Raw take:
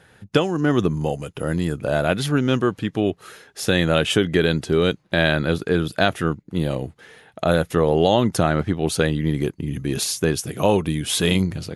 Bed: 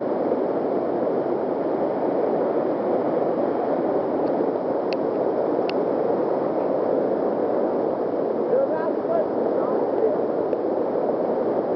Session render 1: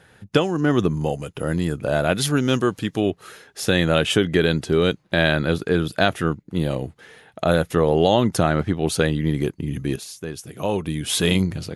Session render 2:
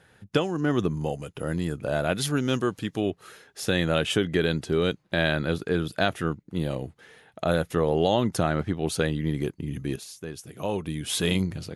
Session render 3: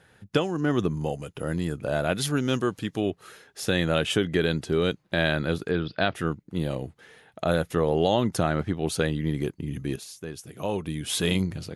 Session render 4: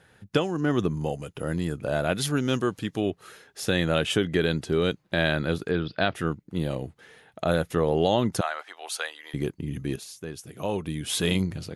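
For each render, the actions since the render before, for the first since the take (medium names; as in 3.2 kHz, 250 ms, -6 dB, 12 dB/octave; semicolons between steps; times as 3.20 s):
2.15–3.06 s: tone controls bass -1 dB, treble +8 dB; 9.96–11.15 s: fade in quadratic, from -13 dB
trim -5.5 dB
5.71–6.15 s: elliptic low-pass 5 kHz
8.41–9.34 s: high-pass 720 Hz 24 dB/octave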